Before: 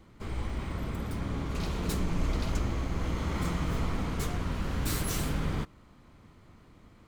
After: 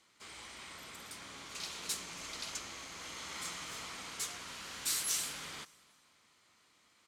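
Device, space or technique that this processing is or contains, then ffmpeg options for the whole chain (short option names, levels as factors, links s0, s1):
piezo pickup straight into a mixer: -af "lowpass=8000,aderivative,aecho=1:1:277|554|831:0.0668|0.0261|0.0102,volume=2.37"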